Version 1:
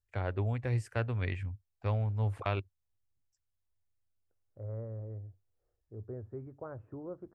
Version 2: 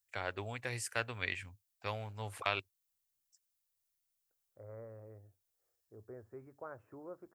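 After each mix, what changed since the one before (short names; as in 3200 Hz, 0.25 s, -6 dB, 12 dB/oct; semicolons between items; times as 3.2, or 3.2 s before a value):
master: add tilt +4.5 dB/oct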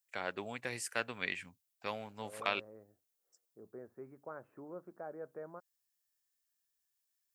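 second voice: entry -2.35 s; master: add resonant low shelf 130 Hz -8 dB, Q 3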